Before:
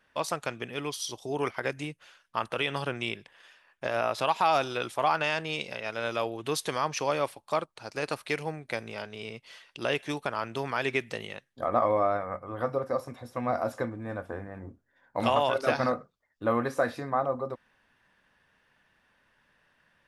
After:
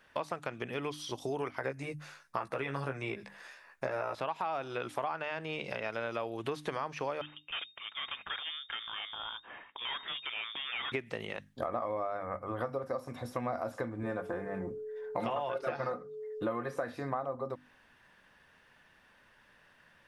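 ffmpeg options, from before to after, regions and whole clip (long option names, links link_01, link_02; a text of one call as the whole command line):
ffmpeg -i in.wav -filter_complex "[0:a]asettb=1/sr,asplit=3[link_01][link_02][link_03];[link_01]atrim=end=1.574[link_04];[link_02]atrim=start=1.57:end=4.15,asetpts=PTS-STARTPTS,afade=type=in:duration=0.004:curve=qsin,afade=type=out:start_time=2.576:duration=0.004:curve=qsin,equalizer=frequency=3100:width=4.2:gain=-12.5,asplit=2[link_05][link_06];[link_06]adelay=15,volume=-4dB[link_07];[link_05][link_07]amix=inputs=2:normalize=0,atrim=end_sample=113778[link_08];[link_03]atrim=start=4.146[link_09];[link_04][link_08]acrossfade=duration=0.004:curve1=hsin:curve2=qsin[link_10];[link_10][link_09]acrossfade=duration=0.004:curve1=qsin:curve2=hsin,asettb=1/sr,asplit=3[link_11][link_12][link_13];[link_11]atrim=end=7.214[link_14];[link_12]atrim=start=7.21:end=10.92,asetpts=PTS-STARTPTS,afade=type=in:duration=0.004:curve=qsin,afade=type=out:start_time=3.706:duration=0.004:curve=qsin,aeval=exprs='(tanh(44.7*val(0)+0.4)-tanh(0.4))/44.7':channel_layout=same,lowpass=frequency=3100:width_type=q:width=0.5098,lowpass=frequency=3100:width_type=q:width=0.6013,lowpass=frequency=3100:width_type=q:width=0.9,lowpass=frequency=3100:width_type=q:width=2.563,afreqshift=-3700[link_15];[link_13]atrim=start=10.916[link_16];[link_14][link_15]acrossfade=duration=0.004:curve1=hsin:curve2=qsin[link_17];[link_17][link_16]acrossfade=duration=0.004:curve1=qsin:curve2=hsin,asettb=1/sr,asplit=3[link_18][link_19][link_20];[link_18]atrim=end=14.034[link_21];[link_19]atrim=start=14.03:end=16.76,asetpts=PTS-STARTPTS,afade=type=in:duration=0.004:curve=qsin,afade=type=out:start_time=2.726:duration=0.004:curve=qsin,aecho=1:1:5.7:0.61,atrim=end_sample=120393,aeval=exprs='val(0)+0.00708*sin(2*PI*430*n/s)':channel_layout=same[link_22];[link_20]atrim=start=16.756[link_23];[link_21][link_22]acrossfade=duration=0.004:curve1=hsin:curve2=qsin[link_24];[link_24][link_23]acrossfade=duration=0.004:curve1=qsin:curve2=hsin,acrossover=split=2700[link_25][link_26];[link_26]acompressor=threshold=-51dB:ratio=4:attack=1:release=60[link_27];[link_25][link_27]amix=inputs=2:normalize=0,bandreject=frequency=50:width_type=h:width=6,bandreject=frequency=100:width_type=h:width=6,bandreject=frequency=150:width_type=h:width=6,bandreject=frequency=200:width_type=h:width=6,bandreject=frequency=250:width_type=h:width=6,bandreject=frequency=300:width_type=h:width=6,acompressor=threshold=-37dB:ratio=6,volume=4.5dB" out.wav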